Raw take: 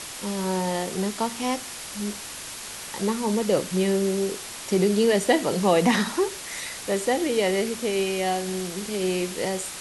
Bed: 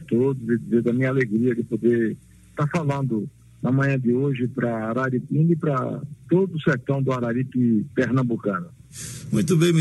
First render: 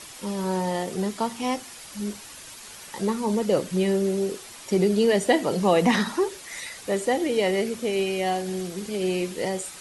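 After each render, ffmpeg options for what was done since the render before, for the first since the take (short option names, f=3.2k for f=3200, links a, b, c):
-af "afftdn=nr=8:nf=-37"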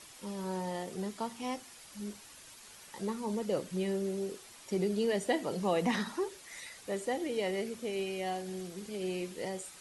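-af "volume=-10.5dB"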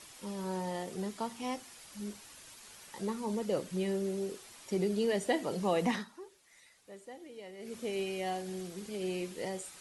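-filter_complex "[0:a]asplit=3[a][b][c];[a]atrim=end=6.07,asetpts=PTS-STARTPTS,afade=t=out:st=5.89:d=0.18:silence=0.188365[d];[b]atrim=start=6.07:end=7.59,asetpts=PTS-STARTPTS,volume=-14.5dB[e];[c]atrim=start=7.59,asetpts=PTS-STARTPTS,afade=t=in:d=0.18:silence=0.188365[f];[d][e][f]concat=n=3:v=0:a=1"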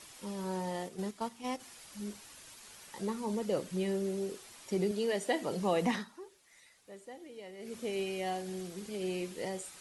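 -filter_complex "[0:a]asplit=3[a][b][c];[a]afade=t=out:st=0.87:d=0.02[d];[b]agate=range=-7dB:threshold=-39dB:ratio=16:release=100:detection=peak,afade=t=in:st=0.87:d=0.02,afade=t=out:st=1.59:d=0.02[e];[c]afade=t=in:st=1.59:d=0.02[f];[d][e][f]amix=inputs=3:normalize=0,asettb=1/sr,asplit=3[g][h][i];[g]atrim=end=4.914[j];[h]atrim=start=4.91:end=5.42,asetpts=PTS-STARTPTS,afade=t=in:d=0.004:c=qsin,afade=t=out:st=0.506:d=0.004:c=qsin,highpass=f=280:p=1[k];[i]atrim=start=5.416[l];[j][k]acrossfade=d=0.004:c1=hsin:c2=qsin[m];[m][l]acrossfade=d=0.004:c1=qsin:c2=hsin"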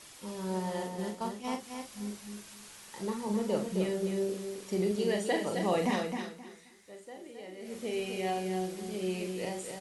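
-filter_complex "[0:a]asplit=2[a][b];[b]adelay=43,volume=-5.5dB[c];[a][c]amix=inputs=2:normalize=0,aecho=1:1:263|526|789:0.501|0.115|0.0265"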